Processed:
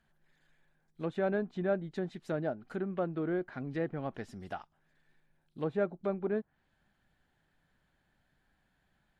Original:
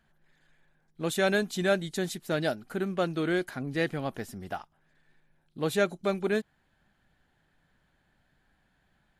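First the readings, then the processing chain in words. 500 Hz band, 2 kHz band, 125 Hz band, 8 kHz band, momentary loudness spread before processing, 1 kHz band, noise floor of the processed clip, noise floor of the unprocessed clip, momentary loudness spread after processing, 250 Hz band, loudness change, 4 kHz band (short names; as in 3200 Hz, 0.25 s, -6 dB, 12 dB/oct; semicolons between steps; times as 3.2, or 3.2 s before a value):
-4.5 dB, -11.5 dB, -4.5 dB, under -20 dB, 10 LU, -6.5 dB, -76 dBFS, -71 dBFS, 10 LU, -4.5 dB, -5.5 dB, -20.0 dB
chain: treble ducked by the level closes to 1100 Hz, closed at -26 dBFS; gain -4.5 dB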